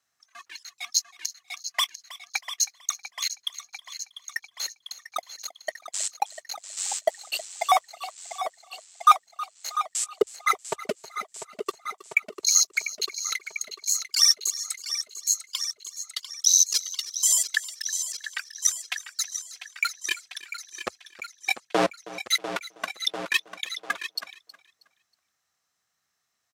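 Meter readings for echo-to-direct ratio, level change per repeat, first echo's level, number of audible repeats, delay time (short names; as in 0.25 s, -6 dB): -17.5 dB, -11.0 dB, -18.0 dB, 2, 0.319 s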